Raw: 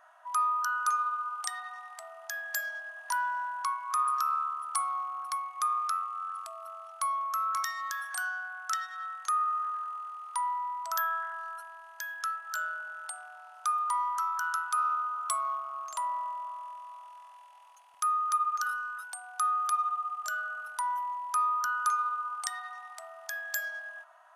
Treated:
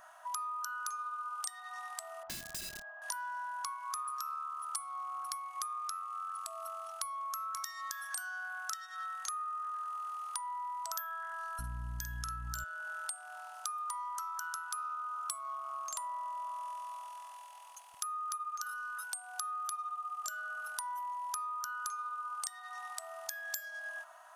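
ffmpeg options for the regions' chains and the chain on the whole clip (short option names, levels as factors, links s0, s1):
-filter_complex "[0:a]asettb=1/sr,asplit=3[s0][s1][s2];[s0]atrim=end=2.234[s3];[s1]atrim=start=2.23:end=3.02,asetpts=PTS-STARTPTS,afade=t=in:d=0.004:c=qsin,afade=t=out:st=0.786:d=0.004:c=qsin,lowpass=1100,aeval=exprs='(mod(106*val(0)+1,2)-1)/106':c=same,asplit=2[s4][s5];[s5]adelay=25,volume=0.237[s6];[s4][s6]amix=inputs=2:normalize=0,atrim=end_sample=34839[s7];[s2]atrim=start=3.016[s8];[s3][s7]acrossfade=d=0.004:c1=hsin:c2=qsin[s9];[s9][s8]acrossfade=d=0.004:c1=qsin:c2=hsin,asettb=1/sr,asplit=3[s10][s11][s12];[s10]atrim=end=11.594[s13];[s11]atrim=start=11.59:end=12.64,asetpts=PTS-STARTPTS,afade=t=in:d=0.004:c=qsin,afade=t=out:st=1.046:d=0.004:c=qsin,aeval=exprs='val(0)+0.00398*(sin(2*PI*60*n/s)+sin(2*PI*2*60*n/s)/2+sin(2*PI*3*60*n/s)/3+sin(2*PI*4*60*n/s)/4+sin(2*PI*5*60*n/s)/5)':c=same,asplit=2[s14][s15];[s15]adelay=48,volume=0.501[s16];[s14][s16]amix=inputs=2:normalize=0,atrim=end_sample=46305[s17];[s12]atrim=start=12.636[s18];[s13][s17]acrossfade=d=0.004:c1=hsin:c2=qsin[s19];[s19][s18]acrossfade=d=0.004:c1=qsin:c2=hsin,bass=f=250:g=14,treble=f=4000:g=10,acompressor=threshold=0.01:ratio=6,volume=1.26"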